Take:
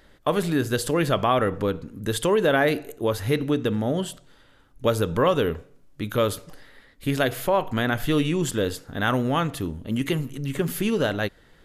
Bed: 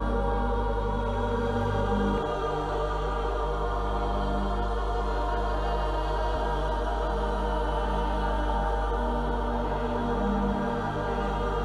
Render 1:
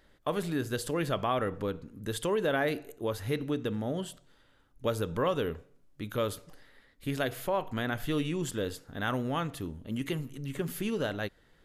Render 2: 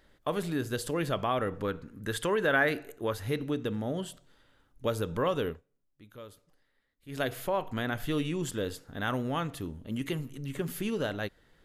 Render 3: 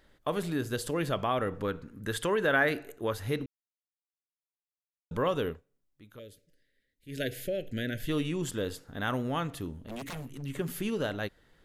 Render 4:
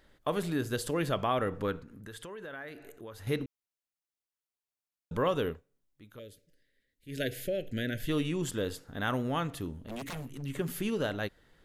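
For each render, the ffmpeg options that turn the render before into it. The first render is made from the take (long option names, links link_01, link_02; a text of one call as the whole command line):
ffmpeg -i in.wav -af "volume=-8.5dB" out.wav
ffmpeg -i in.wav -filter_complex "[0:a]asettb=1/sr,asplit=3[link_01][link_02][link_03];[link_01]atrim=end=1.644[link_04];[link_02]atrim=start=1.64:end=3.14,asetpts=PTS-STARTPTS,afade=type=in:duration=0.004:curve=qsin,afade=type=out:start_time=1.496:duration=0.004:curve=qsin,equalizer=frequency=1600:width=1.4:gain=8[link_05];[link_03]atrim=start=3.136[link_06];[link_04][link_05]acrossfade=duration=0.004:curve1=hsin:curve2=qsin[link_07];[link_07][link_06]acrossfade=duration=0.004:curve1=qsin:curve2=hsin,asplit=3[link_08][link_09][link_10];[link_08]atrim=end=5.61,asetpts=PTS-STARTPTS,afade=type=out:start_time=5.48:duration=0.13:silence=0.158489[link_11];[link_09]atrim=start=5.61:end=7.08,asetpts=PTS-STARTPTS,volume=-16dB[link_12];[link_10]atrim=start=7.08,asetpts=PTS-STARTPTS,afade=type=in:duration=0.13:silence=0.158489[link_13];[link_11][link_12][link_13]concat=n=3:v=0:a=1" out.wav
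ffmpeg -i in.wav -filter_complex "[0:a]asettb=1/sr,asplit=3[link_01][link_02][link_03];[link_01]atrim=end=6.194[link_04];[link_02]atrim=start=6.19:end=8.09,asetpts=PTS-STARTPTS,afade=type=in:duration=0.004:curve=qsin,afade=type=out:start_time=1.896:duration=0.004:curve=qsin,asuperstop=centerf=980:order=8:qfactor=0.98[link_05];[link_03]atrim=start=8.086[link_06];[link_04][link_05]acrossfade=duration=0.004:curve1=hsin:curve2=qsin[link_07];[link_07][link_06]acrossfade=duration=0.004:curve1=qsin:curve2=hsin,asplit=3[link_08][link_09][link_10];[link_08]afade=type=out:start_time=9.81:duration=0.02[link_11];[link_09]aeval=exprs='0.02*(abs(mod(val(0)/0.02+3,4)-2)-1)':channel_layout=same,afade=type=in:start_time=9.81:duration=0.02,afade=type=out:start_time=10.41:duration=0.02[link_12];[link_10]afade=type=in:start_time=10.41:duration=0.02[link_13];[link_11][link_12][link_13]amix=inputs=3:normalize=0,asplit=3[link_14][link_15][link_16];[link_14]atrim=end=3.46,asetpts=PTS-STARTPTS,afade=type=out:start_time=3.456:duration=0.004:curve=hsin[link_17];[link_15]atrim=start=3.46:end=5.11,asetpts=PTS-STARTPTS,volume=0[link_18];[link_16]atrim=start=5.11,asetpts=PTS-STARTPTS,afade=type=in:duration=0.004:curve=hsin[link_19];[link_17][link_18][link_19]concat=n=3:v=0:a=1" out.wav
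ffmpeg -i in.wav -filter_complex "[0:a]asettb=1/sr,asplit=3[link_01][link_02][link_03];[link_01]atrim=end=1.794[link_04];[link_02]atrim=start=1.79:end=3.27,asetpts=PTS-STARTPTS,afade=type=in:duration=0.004:curve=qsin,afade=type=out:start_time=1.476:duration=0.004:curve=qsin,acompressor=threshold=-46dB:ratio=3:attack=3.2:release=140:knee=1:detection=peak[link_05];[link_03]atrim=start=3.266[link_06];[link_04][link_05]acrossfade=duration=0.004:curve1=hsin:curve2=qsin[link_07];[link_07][link_06]acrossfade=duration=0.004:curve1=qsin:curve2=hsin" out.wav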